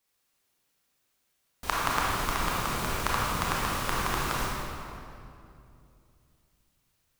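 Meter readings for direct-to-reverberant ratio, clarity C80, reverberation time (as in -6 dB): -5.5 dB, -1.0 dB, 2.6 s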